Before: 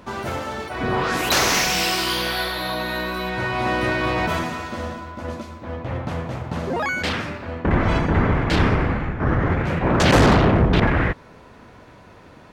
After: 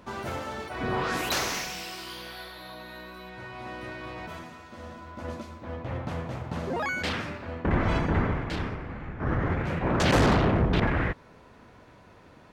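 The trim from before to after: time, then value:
1.18 s -6.5 dB
1.84 s -17 dB
4.65 s -17 dB
5.21 s -6 dB
8.15 s -6 dB
8.83 s -17.5 dB
9.32 s -7 dB

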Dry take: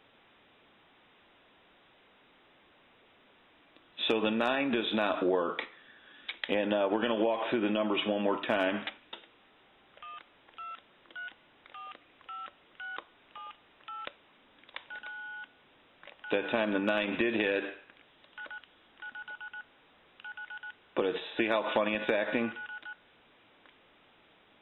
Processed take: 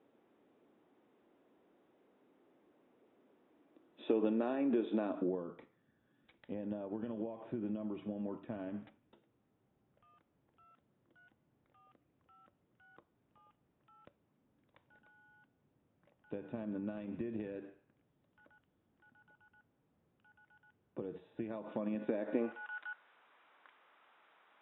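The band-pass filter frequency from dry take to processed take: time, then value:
band-pass filter, Q 1.4
4.98 s 320 Hz
5.51 s 120 Hz
21.42 s 120 Hz
22.30 s 290 Hz
22.75 s 1.2 kHz

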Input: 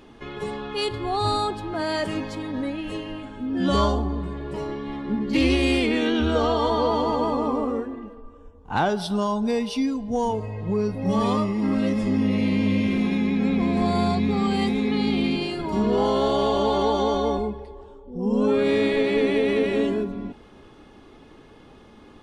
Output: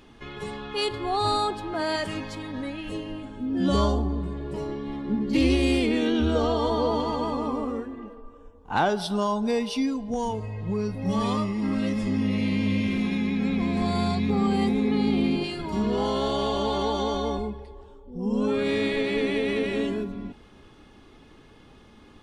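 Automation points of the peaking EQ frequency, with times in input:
peaking EQ -5.5 dB 2.7 oct
470 Hz
from 0.74 s 94 Hz
from 1.96 s 370 Hz
from 2.89 s 1.6 kHz
from 7.00 s 570 Hz
from 7.99 s 78 Hz
from 10.14 s 500 Hz
from 14.30 s 3.5 kHz
from 15.44 s 530 Hz

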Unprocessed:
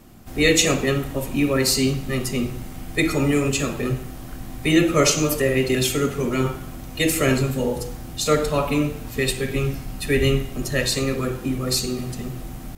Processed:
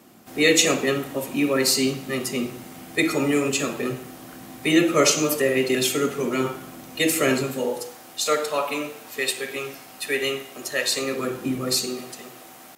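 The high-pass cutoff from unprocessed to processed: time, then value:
7.42 s 230 Hz
7.94 s 510 Hz
10.84 s 510 Hz
11.55 s 150 Hz
12.18 s 540 Hz

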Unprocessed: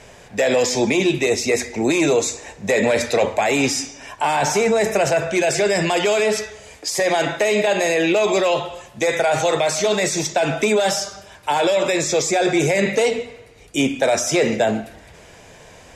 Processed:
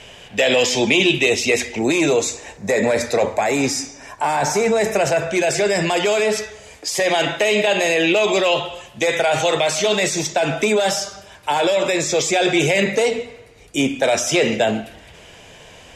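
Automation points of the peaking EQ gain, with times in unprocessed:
peaking EQ 3 kHz 0.49 oct
+14.5 dB
from 1.79 s +3.5 dB
from 2.57 s -7.5 dB
from 4.64 s +1 dB
from 6.90 s +8.5 dB
from 10.10 s +2.5 dB
from 12.19 s +12 dB
from 12.83 s +0.5 dB
from 14.04 s +9 dB

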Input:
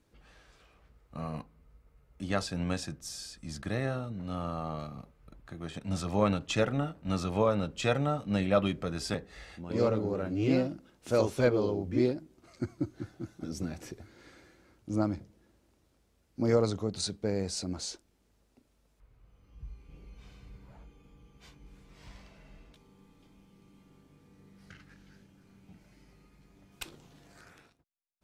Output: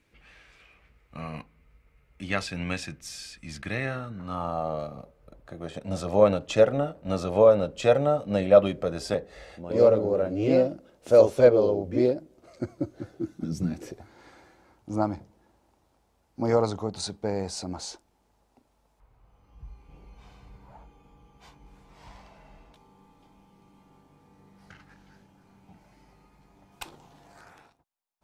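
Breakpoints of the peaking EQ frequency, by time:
peaking EQ +12.5 dB 0.86 oct
3.85 s 2.3 kHz
4.70 s 560 Hz
13.07 s 560 Hz
13.60 s 130 Hz
14.00 s 850 Hz

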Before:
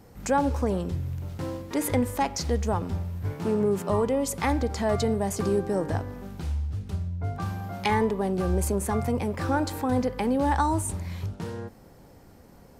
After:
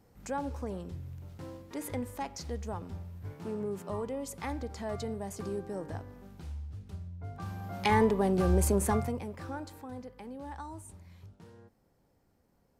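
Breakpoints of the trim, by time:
7.28 s -11.5 dB
7.99 s -0.5 dB
8.91 s -0.5 dB
9.19 s -10.5 dB
10.01 s -19 dB

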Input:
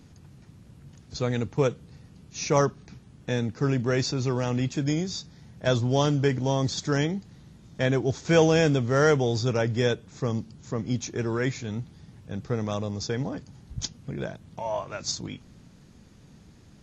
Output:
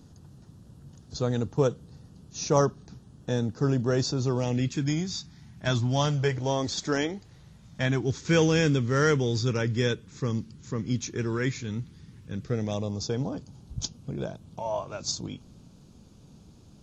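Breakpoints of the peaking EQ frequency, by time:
peaking EQ -14.5 dB 0.55 oct
4.30 s 2.2 kHz
4.86 s 500 Hz
5.83 s 500 Hz
6.85 s 110 Hz
8.16 s 690 Hz
12.33 s 690 Hz
12.97 s 1.9 kHz

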